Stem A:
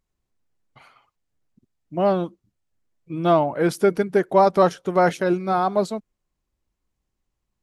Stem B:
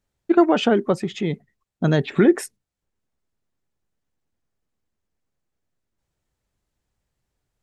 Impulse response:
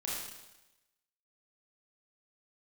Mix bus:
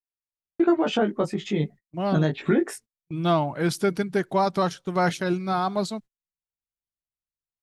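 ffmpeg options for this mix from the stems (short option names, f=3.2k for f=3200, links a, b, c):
-filter_complex "[0:a]equalizer=f=125:t=o:w=1:g=6,equalizer=f=500:t=o:w=1:g=-6,equalizer=f=4k:t=o:w=1:g=6,equalizer=f=8k:t=o:w=1:g=3,volume=-2.5dB,afade=t=in:st=1.65:d=0.7:silence=0.473151[a];[1:a]flanger=delay=17.5:depth=2.4:speed=0.34,adelay=300,volume=2.5dB[b];[a][b]amix=inputs=2:normalize=0,agate=range=-30dB:threshold=-40dB:ratio=16:detection=peak,alimiter=limit=-11.5dB:level=0:latency=1:release=424"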